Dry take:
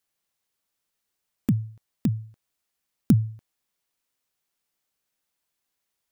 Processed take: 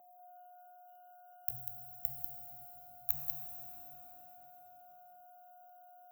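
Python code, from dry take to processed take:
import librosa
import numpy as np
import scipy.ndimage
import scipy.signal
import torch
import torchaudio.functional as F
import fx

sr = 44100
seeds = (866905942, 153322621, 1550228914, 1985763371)

p1 = fx.pitch_glide(x, sr, semitones=9.5, runs='starting unshifted')
p2 = fx.schmitt(p1, sr, flips_db=-29.5)
p3 = p1 + F.gain(torch.from_numpy(p2), -9.0).numpy()
p4 = scipy.signal.sosfilt(scipy.signal.cheby2(4, 70, [180.0, 5000.0], 'bandstop', fs=sr, output='sos'), p3)
p5 = p4 + 10.0 ** (-75.0 / 20.0) * np.sin(2.0 * np.pi * 720.0 * np.arange(len(p4)) / sr)
p6 = scipy.signal.sosfilt(scipy.signal.butter(4, 99.0, 'highpass', fs=sr, output='sos'), p5)
p7 = p6 + fx.echo_single(p6, sr, ms=193, db=-7.5, dry=0)
p8 = 10.0 ** (-31.0 / 20.0) * np.tanh(p7 / 10.0 ** (-31.0 / 20.0))
p9 = fx.rev_shimmer(p8, sr, seeds[0], rt60_s=3.7, semitones=12, shimmer_db=-8, drr_db=4.5)
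y = F.gain(torch.from_numpy(p9), 17.0).numpy()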